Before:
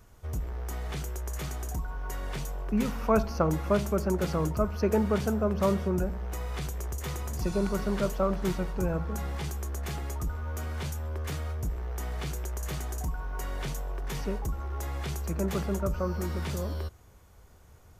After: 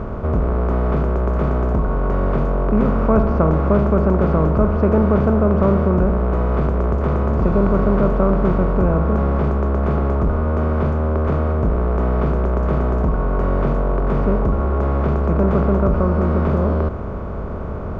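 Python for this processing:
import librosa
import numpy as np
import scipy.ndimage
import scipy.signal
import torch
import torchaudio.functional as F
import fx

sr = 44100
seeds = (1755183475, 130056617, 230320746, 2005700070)

y = fx.bin_compress(x, sr, power=0.4)
y = scipy.signal.sosfilt(scipy.signal.butter(2, 1600.0, 'lowpass', fs=sr, output='sos'), y)
y = fx.low_shelf(y, sr, hz=230.0, db=8.5)
y = y * 10.0 ** (2.5 / 20.0)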